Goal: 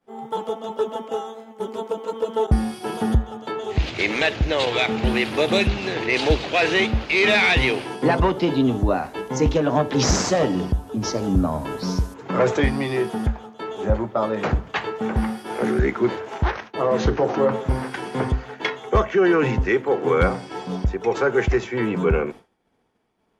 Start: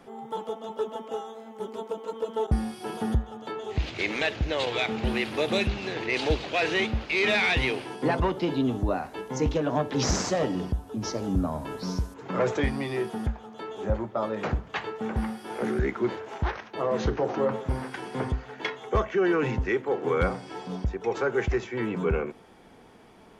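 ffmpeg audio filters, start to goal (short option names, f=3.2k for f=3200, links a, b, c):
-af "agate=range=-33dB:threshold=-38dB:ratio=3:detection=peak,volume=6.5dB"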